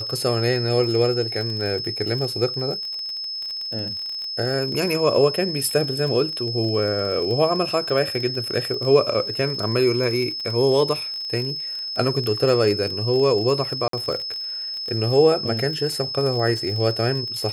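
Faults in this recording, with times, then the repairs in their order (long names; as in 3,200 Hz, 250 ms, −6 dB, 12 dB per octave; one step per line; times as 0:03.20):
surface crackle 30 per second −27 dBFS
whistle 5,200 Hz −27 dBFS
0:13.88–0:13.93: drop-out 53 ms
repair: click removal
notch filter 5,200 Hz, Q 30
repair the gap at 0:13.88, 53 ms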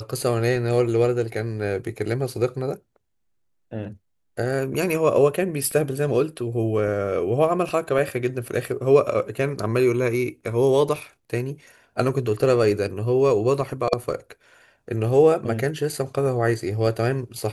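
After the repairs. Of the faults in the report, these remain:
none of them is left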